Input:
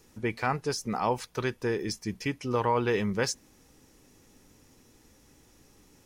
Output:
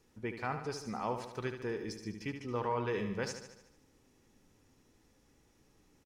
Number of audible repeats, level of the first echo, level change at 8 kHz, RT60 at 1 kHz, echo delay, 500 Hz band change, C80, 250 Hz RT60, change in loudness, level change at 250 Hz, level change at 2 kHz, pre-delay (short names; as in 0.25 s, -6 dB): 6, -8.5 dB, -12.0 dB, none, 74 ms, -7.5 dB, none, none, -8.0 dB, -7.5 dB, -8.5 dB, none